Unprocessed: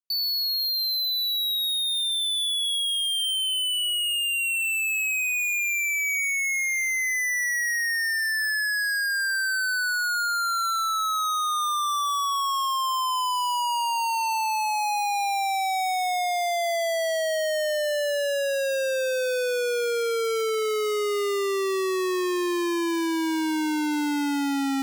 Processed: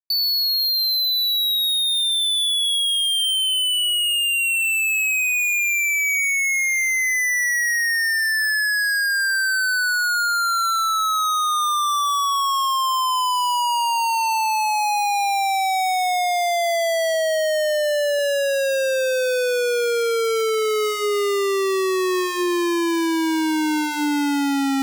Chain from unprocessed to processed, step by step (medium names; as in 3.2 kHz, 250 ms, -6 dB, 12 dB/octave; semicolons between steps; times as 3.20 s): hum notches 60/120/180/240/300/360/420 Hz; crossover distortion -52.5 dBFS; 17.14–18.19 s: peaking EQ 140 Hz +13.5 dB 1.8 oct; in parallel at 0 dB: compressor with a negative ratio -27 dBFS